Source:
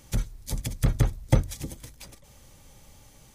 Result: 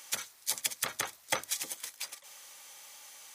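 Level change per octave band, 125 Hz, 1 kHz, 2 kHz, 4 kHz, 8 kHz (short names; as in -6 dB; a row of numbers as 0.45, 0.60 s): -33.5, +0.5, +5.0, +6.0, +6.5 dB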